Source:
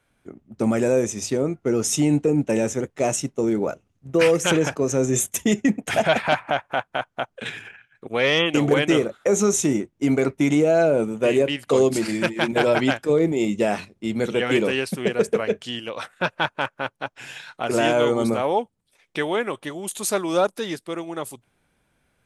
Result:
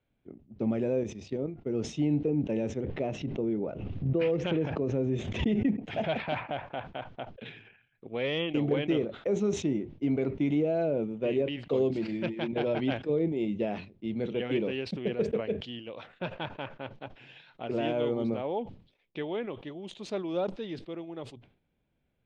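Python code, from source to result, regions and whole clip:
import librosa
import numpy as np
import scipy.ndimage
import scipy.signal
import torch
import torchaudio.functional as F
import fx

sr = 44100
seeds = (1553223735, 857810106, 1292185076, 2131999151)

y = fx.chain(x, sr, fx.high_shelf(hz=10000.0, db=3.5),
    fx.level_steps(step_db=11), at=(1.03, 1.75))
y = fx.chain(y, sr, fx.air_absorb(metres=150.0),
    fx.pre_swell(db_per_s=34.0), at=(2.84, 5.69))
y = scipy.signal.sosfilt(scipy.signal.butter(4, 3400.0, 'lowpass', fs=sr, output='sos'), y)
y = fx.peak_eq(y, sr, hz=1400.0, db=-12.0, octaves=1.7)
y = fx.sustainer(y, sr, db_per_s=120.0)
y = y * librosa.db_to_amplitude(-7.0)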